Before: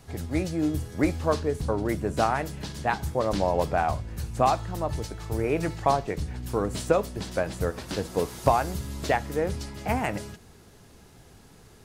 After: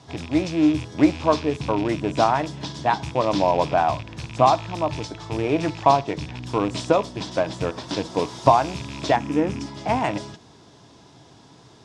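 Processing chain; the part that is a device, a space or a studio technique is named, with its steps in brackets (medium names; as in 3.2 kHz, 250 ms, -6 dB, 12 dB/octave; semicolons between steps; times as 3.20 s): car door speaker with a rattle (rattle on loud lows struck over -32 dBFS, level -28 dBFS; cabinet simulation 100–7900 Hz, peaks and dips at 130 Hz +7 dB, 300 Hz +9 dB, 660 Hz +6 dB, 980 Hz +10 dB, 3.5 kHz +9 dB, 5.3 kHz +7 dB); 9.16–9.66 s: fifteen-band graphic EQ 250 Hz +10 dB, 630 Hz -5 dB, 4 kHz -10 dB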